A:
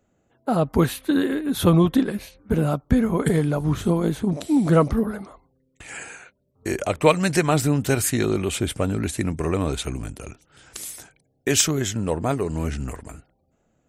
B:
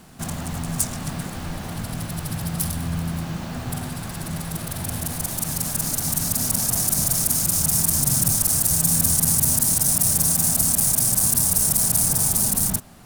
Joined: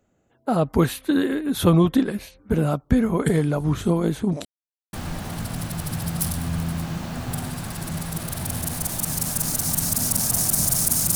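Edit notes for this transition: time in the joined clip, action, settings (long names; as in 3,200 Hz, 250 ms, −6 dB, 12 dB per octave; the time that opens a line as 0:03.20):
A
0:04.45–0:04.93: silence
0:04.93: continue with B from 0:01.32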